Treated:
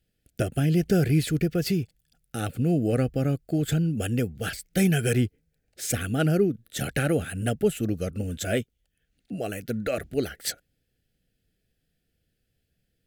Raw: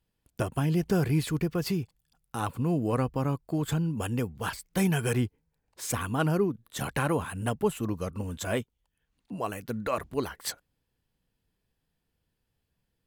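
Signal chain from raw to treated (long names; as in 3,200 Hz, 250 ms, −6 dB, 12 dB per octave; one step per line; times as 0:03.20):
Butterworth band-reject 1,000 Hz, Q 1.4
level +4 dB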